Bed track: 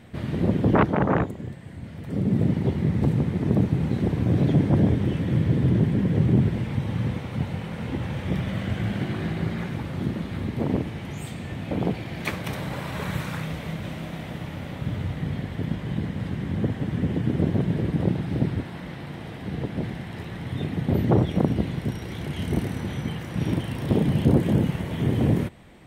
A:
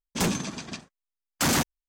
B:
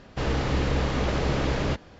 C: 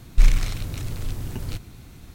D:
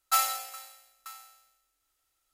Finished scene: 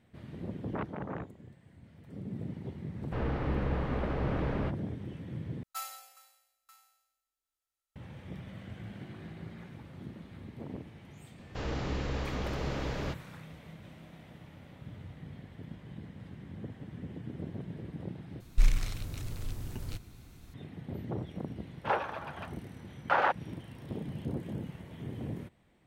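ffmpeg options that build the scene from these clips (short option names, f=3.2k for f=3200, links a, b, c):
-filter_complex "[2:a]asplit=2[a][b];[0:a]volume=-17.5dB[c];[a]lowpass=1.9k[d];[1:a]highpass=f=460:w=0.5412,highpass=f=460:w=1.3066,equalizer=f=550:t=q:w=4:g=6,equalizer=f=840:t=q:w=4:g=8,equalizer=f=1.4k:t=q:w=4:g=6,equalizer=f=2.2k:t=q:w=4:g=-5,lowpass=f=2.4k:w=0.5412,lowpass=f=2.4k:w=1.3066[e];[c]asplit=3[f][g][h];[f]atrim=end=5.634[i];[4:a]atrim=end=2.33,asetpts=PTS-STARTPTS,volume=-15dB[j];[g]atrim=start=7.956:end=18.404[k];[3:a]atrim=end=2.14,asetpts=PTS-STARTPTS,volume=-8.5dB[l];[h]atrim=start=20.536[m];[d]atrim=end=1.99,asetpts=PTS-STARTPTS,volume=-7dB,afade=t=in:d=0.004:c=hsin,afade=t=out:st=1.986:d=0.004:c=hsin,adelay=2950[n];[b]atrim=end=1.99,asetpts=PTS-STARTPTS,volume=-9.5dB,afade=t=in:d=0.004:c=hsin,afade=t=out:st=1.986:d=0.004:c=hsin,adelay=501858S[o];[e]atrim=end=1.88,asetpts=PTS-STARTPTS,volume=-2dB,afade=t=in:d=0.004:c=hsin,afade=t=out:st=1.876:d=0.004:c=hsin,adelay=21690[p];[i][j]acrossfade=d=0.004:c1=hsin:c2=hsin[q];[q][k]acrossfade=d=0.004:c1=hsin:c2=hsin[r];[r][l]acrossfade=d=0.004:c1=hsin:c2=hsin[s];[s][m]acrossfade=d=0.004:c1=hsin:c2=hsin[t];[t][n][o][p]amix=inputs=4:normalize=0"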